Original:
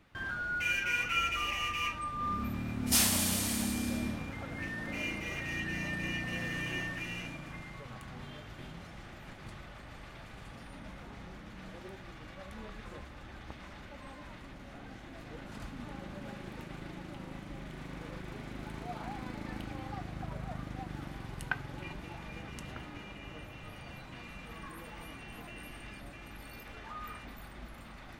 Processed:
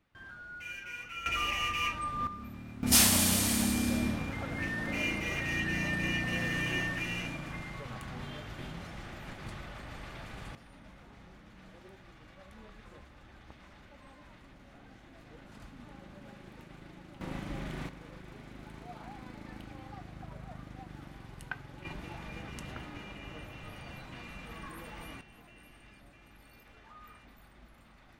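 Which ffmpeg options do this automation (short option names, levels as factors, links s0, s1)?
-af "asetnsamples=n=441:p=0,asendcmd='1.26 volume volume 2dB;2.27 volume volume -8.5dB;2.83 volume volume 4dB;10.55 volume volume -6.5dB;17.21 volume volume 5.5dB;17.89 volume volume -5.5dB;21.85 volume volume 1dB;25.21 volume volume -9.5dB',volume=0.282"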